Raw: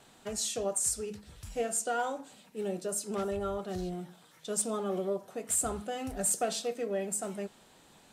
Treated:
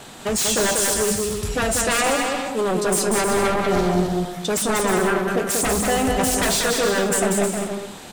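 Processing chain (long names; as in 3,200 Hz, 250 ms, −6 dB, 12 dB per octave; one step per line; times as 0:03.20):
sine wavefolder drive 11 dB, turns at −21.5 dBFS
on a send: bouncing-ball delay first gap 190 ms, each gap 0.65×, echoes 5
on the sum: level +3.5 dB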